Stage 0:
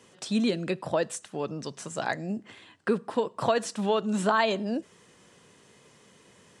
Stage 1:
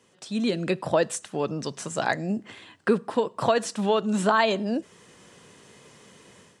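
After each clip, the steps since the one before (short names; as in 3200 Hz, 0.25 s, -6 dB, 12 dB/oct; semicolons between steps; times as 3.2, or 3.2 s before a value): AGC gain up to 11 dB; gain -5.5 dB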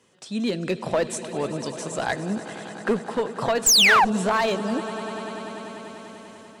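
swelling echo 98 ms, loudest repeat 5, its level -17.5 dB; painted sound fall, 3.66–4.05, 710–8300 Hz -13 dBFS; one-sided clip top -18 dBFS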